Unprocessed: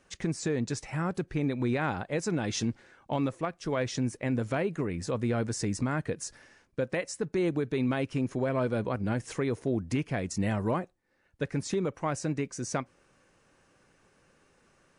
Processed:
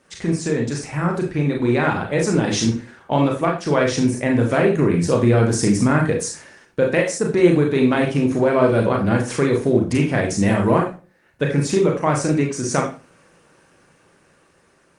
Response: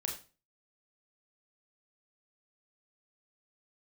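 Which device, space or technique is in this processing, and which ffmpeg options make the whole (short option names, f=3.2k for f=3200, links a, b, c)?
far-field microphone of a smart speaker: -filter_complex "[0:a]asettb=1/sr,asplit=3[a][b][c];[a]atrim=end=4.744[d];[b]atrim=start=4.74:end=6.06,asetpts=PTS-STARTPTS,afade=t=in:d=0.004:c=qsin,afade=t=out:st=1.316:d=0.004:c=qsin,equalizer=f=190:w=0.67:g=2.5[e];[c]atrim=start=6.056[f];[d][e]acrossfade=d=0.004:c1=hsin:c2=qsin[g];[g][f]acrossfade=d=0.004:c1=qsin:c2=hsin[h];[1:a]atrim=start_sample=2205[i];[h][i]afir=irnorm=-1:irlink=0,highpass=f=130:p=1,dynaudnorm=f=800:g=5:m=4dB,volume=8.5dB" -ar 48000 -c:a libopus -b:a 24k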